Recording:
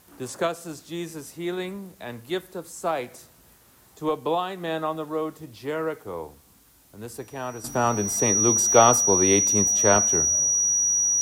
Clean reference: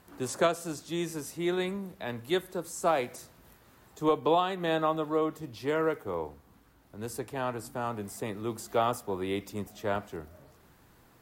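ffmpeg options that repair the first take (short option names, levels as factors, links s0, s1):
-af "bandreject=f=5800:w=30,agate=range=0.0891:threshold=0.00447,asetnsamples=n=441:p=0,asendcmd='7.64 volume volume -11dB',volume=1"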